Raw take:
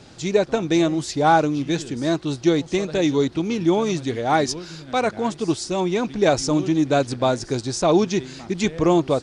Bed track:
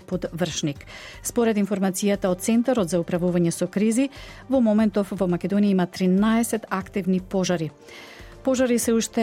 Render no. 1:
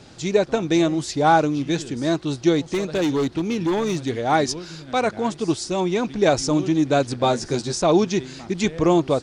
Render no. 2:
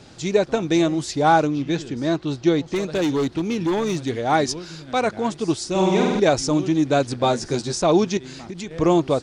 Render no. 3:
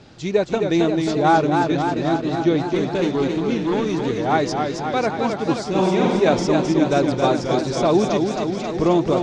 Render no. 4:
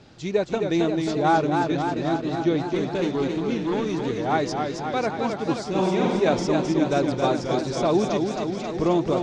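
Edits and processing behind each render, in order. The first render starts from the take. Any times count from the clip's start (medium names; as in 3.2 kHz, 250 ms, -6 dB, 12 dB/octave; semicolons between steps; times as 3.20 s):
2.65–4.09 s: hard clipper -17.5 dBFS; 7.22–7.75 s: doubling 13 ms -3 dB
1.47–2.76 s: distance through air 77 m; 5.70–6.20 s: flutter echo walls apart 8.2 m, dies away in 1.4 s; 8.17–8.71 s: compression 5:1, threshold -29 dBFS
distance through air 97 m; modulated delay 267 ms, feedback 71%, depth 101 cents, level -5 dB
trim -4 dB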